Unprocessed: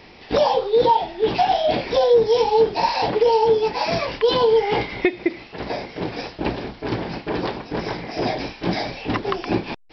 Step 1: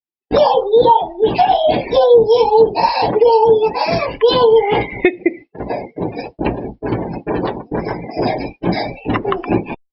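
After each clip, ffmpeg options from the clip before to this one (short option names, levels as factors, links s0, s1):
-af "afftdn=nr=34:nf=-30,agate=range=0.0224:threshold=0.0224:ratio=3:detection=peak,volume=2"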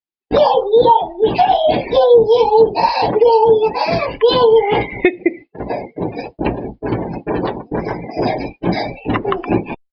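-af "aresample=11025,aresample=44100"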